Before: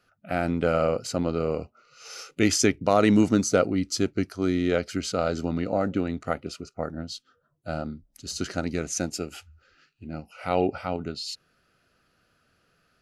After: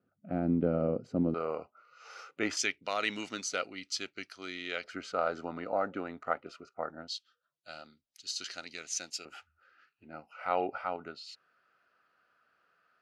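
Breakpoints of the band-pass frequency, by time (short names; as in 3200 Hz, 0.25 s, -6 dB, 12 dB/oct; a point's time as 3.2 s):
band-pass, Q 1.2
240 Hz
from 1.34 s 1100 Hz
from 2.57 s 2900 Hz
from 4.84 s 1100 Hz
from 7.08 s 3700 Hz
from 9.25 s 1200 Hz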